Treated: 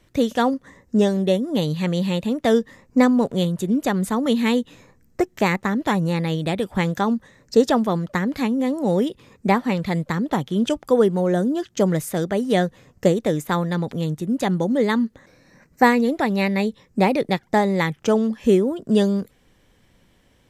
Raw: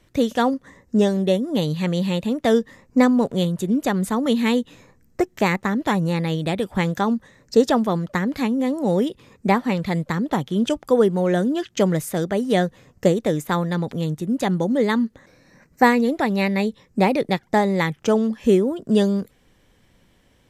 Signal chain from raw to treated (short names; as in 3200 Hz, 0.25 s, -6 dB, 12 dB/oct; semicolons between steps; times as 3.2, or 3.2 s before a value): 11.2–11.88 dynamic EQ 2500 Hz, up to -8 dB, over -44 dBFS, Q 1.1